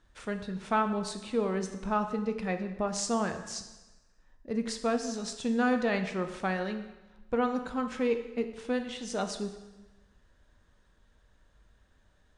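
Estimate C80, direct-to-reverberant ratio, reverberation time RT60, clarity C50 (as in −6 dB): 11.0 dB, 7.0 dB, 1.1 s, 9.5 dB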